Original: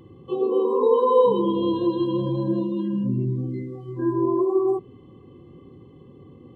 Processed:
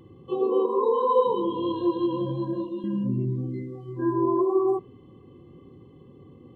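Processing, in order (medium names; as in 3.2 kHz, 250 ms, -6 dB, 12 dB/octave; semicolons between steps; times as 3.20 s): 0.66–2.84 s: chorus voices 6, 1.4 Hz, delay 20 ms, depth 3 ms; dynamic bell 1.2 kHz, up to +5 dB, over -37 dBFS, Q 0.74; trim -2.5 dB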